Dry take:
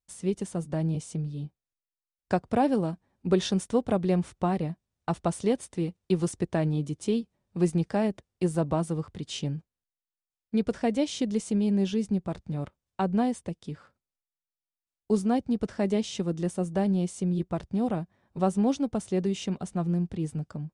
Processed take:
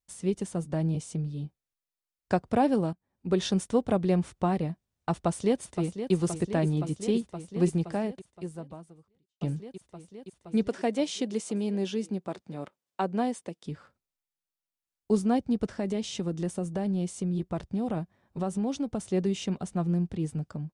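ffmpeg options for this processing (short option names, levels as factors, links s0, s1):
-filter_complex "[0:a]asplit=2[s0][s1];[s1]afade=t=in:st=5.13:d=0.01,afade=t=out:st=6.13:d=0.01,aecho=0:1:520|1040|1560|2080|2600|3120|3640|4160|4680|5200|5720|6240:0.334965|0.284721|0.242013|0.205711|0.174854|0.148626|0.126332|0.107382|0.0912749|0.0775837|0.0659461|0.0560542[s2];[s0][s2]amix=inputs=2:normalize=0,asettb=1/sr,asplit=3[s3][s4][s5];[s3]atrim=end=10.684[s6];[s4]atrim=start=10.68:end=13.66,asetpts=PTS-STARTPTS,afade=t=in:d=0.004:c=qsin,afade=t=out:st=2.976:d=0.004:c=qsin,highpass=260[s7];[s5]atrim=start=13.656[s8];[s6][s7]acrossfade=d=0.004:c1=hsin:c2=qsin[s9];[s9][s8]acrossfade=d=0.004:c1=qsin:c2=hsin,asettb=1/sr,asplit=3[s10][s11][s12];[s10]atrim=end=15.684[s13];[s11]atrim=start=15.68:end=19.13,asetpts=PTS-STARTPTS,afade=t=in:d=0.004:c=qsin,afade=t=out:st=3.446:d=0.004:c=qsin,acompressor=threshold=0.0562:ratio=6:attack=3.2:release=140:knee=1:detection=peak[s14];[s12]atrim=start=19.126[s15];[s13][s14]acrossfade=d=0.004:c1=hsin:c2=qsin[s16];[s16][s15]acrossfade=d=0.004:c1=qsin:c2=hsin,asplit=3[s17][s18][s19];[s17]atrim=end=2.93,asetpts=PTS-STARTPTS,afade=t=out:st=2.926:d=0.004:c=hsin:silence=0.112202[s20];[s18]atrim=start=2.93:end=9.41,asetpts=PTS-STARTPTS,afade=t=in:d=0.58:silence=0.112202,afade=t=out:st=4.69:d=1.79:c=qua[s21];[s19]atrim=start=9.41,asetpts=PTS-STARTPTS,afade=t=in:d=0.004:c=hsin[s22];[s20][s21][s22]concat=n=3:v=0:a=1"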